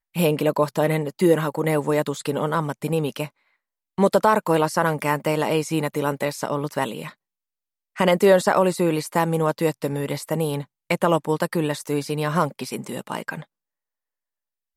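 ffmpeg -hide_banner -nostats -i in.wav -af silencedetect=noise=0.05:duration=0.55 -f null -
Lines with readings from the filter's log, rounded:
silence_start: 3.26
silence_end: 3.98 | silence_duration: 0.73
silence_start: 7.07
silence_end: 7.98 | silence_duration: 0.91
silence_start: 13.42
silence_end: 14.77 | silence_duration: 1.34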